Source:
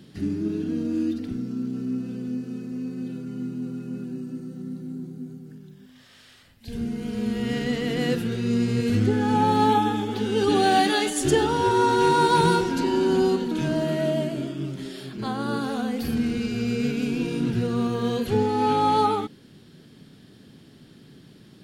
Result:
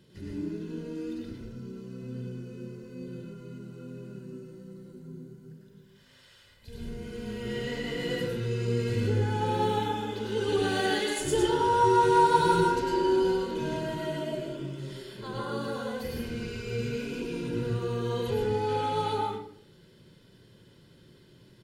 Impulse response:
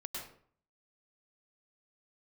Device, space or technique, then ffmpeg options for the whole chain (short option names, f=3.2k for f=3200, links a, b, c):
microphone above a desk: -filter_complex "[0:a]asettb=1/sr,asplit=3[a][b][c];[a]atrim=end=2.024[d];[b]atrim=start=2.02:end=3.08,asetpts=PTS-STARTPTS,afade=t=in:d=0.004:c=qsin,afade=t=out:st=1.056:d=0.004:c=qsin,equalizer=f=130:t=o:w=0.77:g=8.5[e];[c]atrim=start=3.076[f];[d][e]acrossfade=d=0.004:c1=hsin:c2=qsin[g];[g][f]acrossfade=d=0.004:c1=qsin:c2=hsin,aecho=1:1:2:0.56[h];[1:a]atrim=start_sample=2205[i];[h][i]afir=irnorm=-1:irlink=0,volume=-5dB"